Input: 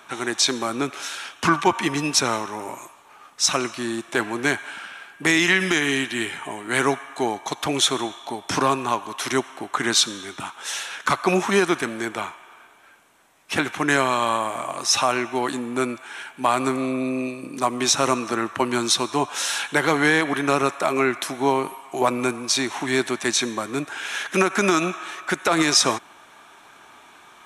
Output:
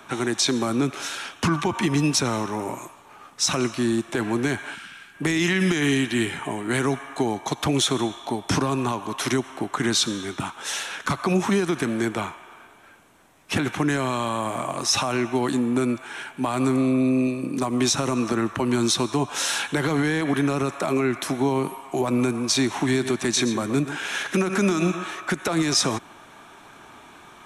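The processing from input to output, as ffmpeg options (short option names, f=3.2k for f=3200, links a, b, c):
-filter_complex "[0:a]asplit=3[a][b][c];[a]afade=t=out:st=4.74:d=0.02[d];[b]equalizer=f=620:w=0.64:g=-14,afade=t=in:st=4.74:d=0.02,afade=t=out:st=5.14:d=0.02[e];[c]afade=t=in:st=5.14:d=0.02[f];[d][e][f]amix=inputs=3:normalize=0,asettb=1/sr,asplit=3[g][h][i];[g]atrim=end=22.764[j];[h]atrim=start=22.76:end=25.07,asetpts=PTS-STARTPTS,afade=t=in:d=0.004:c=qsin,afade=t=out:st=2.306:d=0.004:c=qsin,aecho=1:1:122:0.2,atrim=end_sample=101871[k];[i]atrim=start=25.066[l];[j][k]acrossfade=d=0.004:c1=hsin:c2=qsin[m];[m][l]acrossfade=d=0.004:c1=qsin:c2=hsin,lowshelf=f=380:g=11,alimiter=limit=-10.5dB:level=0:latency=1:release=67,acrossover=split=240|3000[n][o][p];[o]acompressor=threshold=-25dB:ratio=2[q];[n][q][p]amix=inputs=3:normalize=0"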